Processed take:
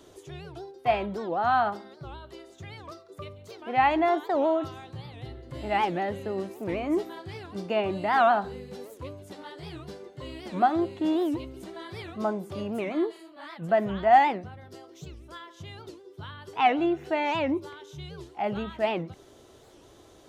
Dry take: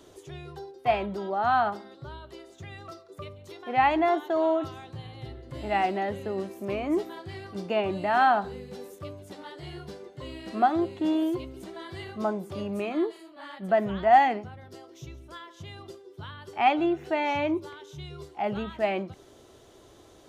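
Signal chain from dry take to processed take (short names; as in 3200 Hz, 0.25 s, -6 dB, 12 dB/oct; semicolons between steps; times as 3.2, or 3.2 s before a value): record warp 78 rpm, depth 250 cents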